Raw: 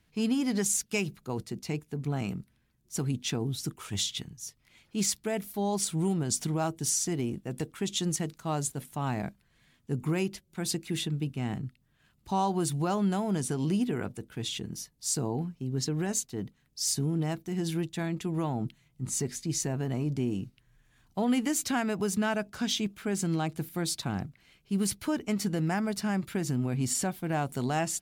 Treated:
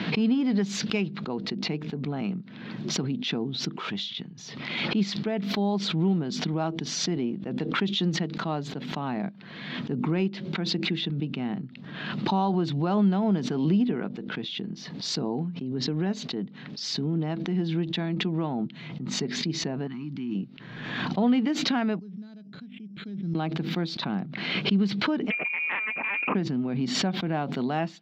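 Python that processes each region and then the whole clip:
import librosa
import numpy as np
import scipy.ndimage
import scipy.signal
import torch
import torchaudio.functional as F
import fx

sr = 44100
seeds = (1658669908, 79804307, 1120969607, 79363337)

y = fx.chain(x, sr, fx.cheby1_bandstop(low_hz=280.0, high_hz=1100.0, order=2),
    fx.low_shelf(hz=490.0, db=-6.5), at=(19.87, 20.35))
y = fx.chain(y, sr, fx.resample_bad(factor=8, down='filtered', up='hold'),
    fx.tone_stack(knobs='10-0-1'), at=(21.99, 23.35))
y = fx.chain(y, sr, fx.freq_invert(carrier_hz=2600),
    fx.doppler_dist(depth_ms=0.21), at=(25.3, 26.35))
y = scipy.signal.sosfilt(scipy.signal.ellip(3, 1.0, 40, [180.0, 4000.0], 'bandpass', fs=sr, output='sos'), y)
y = fx.low_shelf(y, sr, hz=290.0, db=8.0)
y = fx.pre_swell(y, sr, db_per_s=39.0)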